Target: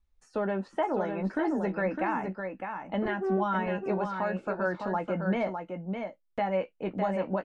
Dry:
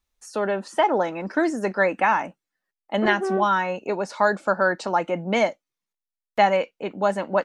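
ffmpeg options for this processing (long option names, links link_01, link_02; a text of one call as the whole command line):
ffmpeg -i in.wav -filter_complex "[0:a]aemphasis=mode=reproduction:type=bsi,acrossover=split=3400[link_01][link_02];[link_01]alimiter=limit=-14dB:level=0:latency=1:release=239[link_03];[link_02]acompressor=threshold=-57dB:ratio=10[link_04];[link_03][link_04]amix=inputs=2:normalize=0,asplit=2[link_05][link_06];[link_06]adelay=16,volume=-9dB[link_07];[link_05][link_07]amix=inputs=2:normalize=0,aecho=1:1:607:0.501,volume=-6dB" out.wav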